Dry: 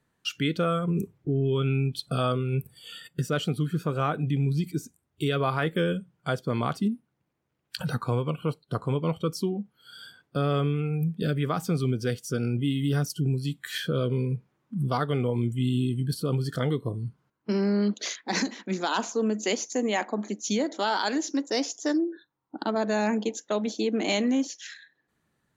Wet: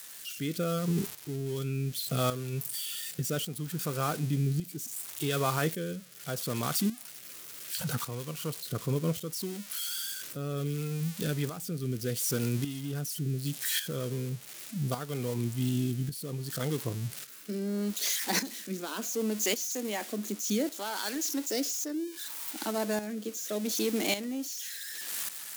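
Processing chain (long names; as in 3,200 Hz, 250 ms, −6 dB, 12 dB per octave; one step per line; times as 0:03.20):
spike at every zero crossing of −20.5 dBFS
shaped tremolo saw up 0.87 Hz, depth 65%
rotating-speaker cabinet horn 0.7 Hz
level −1 dB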